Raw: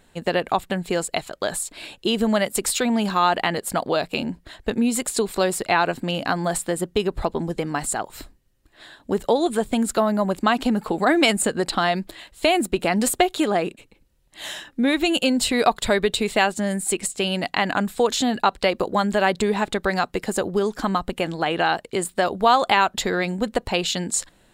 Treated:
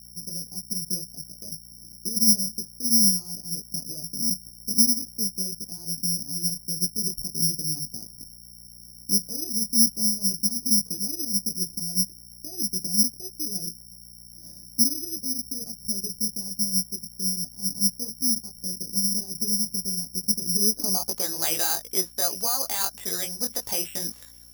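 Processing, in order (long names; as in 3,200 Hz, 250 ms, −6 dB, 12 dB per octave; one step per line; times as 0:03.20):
low-shelf EQ 81 Hz −10.5 dB
automatic gain control gain up to 16 dB
brickwall limiter −7 dBFS, peak gain reduction 6.5 dB
chorus effect 2.7 Hz, delay 18 ms, depth 3.7 ms
mains hum 60 Hz, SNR 22 dB
low-pass filter sweep 190 Hz → 13,000 Hz, 0:20.55–0:22.00
delay with a high-pass on its return 810 ms, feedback 55%, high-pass 5,300 Hz, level −12.5 dB
bad sample-rate conversion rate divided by 8×, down filtered, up zero stuff
level −13.5 dB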